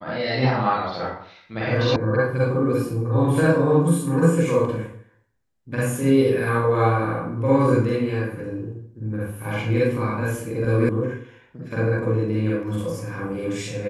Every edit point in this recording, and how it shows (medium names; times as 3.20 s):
1.96 s: sound stops dead
10.89 s: sound stops dead